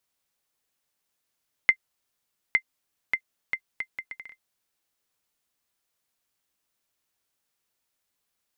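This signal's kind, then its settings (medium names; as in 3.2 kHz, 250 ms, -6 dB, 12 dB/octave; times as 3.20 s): bouncing ball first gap 0.86 s, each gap 0.68, 2.08 kHz, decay 72 ms -6.5 dBFS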